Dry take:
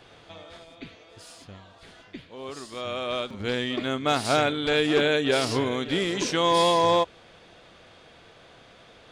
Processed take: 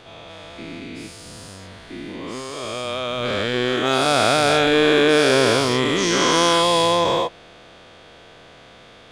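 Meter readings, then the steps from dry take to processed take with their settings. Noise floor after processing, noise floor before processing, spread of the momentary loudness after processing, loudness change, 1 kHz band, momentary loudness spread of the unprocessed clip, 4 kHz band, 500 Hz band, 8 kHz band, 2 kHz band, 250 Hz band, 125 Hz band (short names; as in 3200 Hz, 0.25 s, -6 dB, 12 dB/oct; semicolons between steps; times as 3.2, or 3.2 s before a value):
-46 dBFS, -53 dBFS, 20 LU, +6.5 dB, +5.5 dB, 15 LU, +7.5 dB, +6.5 dB, +10.0 dB, +8.0 dB, +6.0 dB, +5.5 dB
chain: spectral dilation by 0.48 s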